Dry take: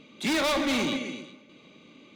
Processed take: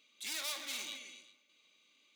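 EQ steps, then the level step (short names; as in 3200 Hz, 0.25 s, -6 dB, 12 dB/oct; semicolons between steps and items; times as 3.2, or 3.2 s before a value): differentiator; -3.5 dB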